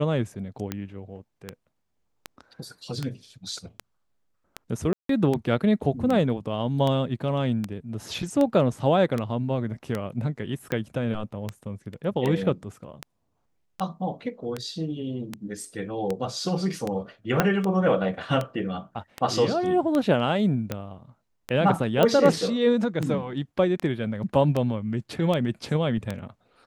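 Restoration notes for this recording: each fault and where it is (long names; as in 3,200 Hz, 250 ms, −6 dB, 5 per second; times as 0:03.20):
scratch tick 78 rpm −14 dBFS
0:04.93–0:05.09: drop-out 163 ms
0:17.40: click −5 dBFS
0:22.03: click −8 dBFS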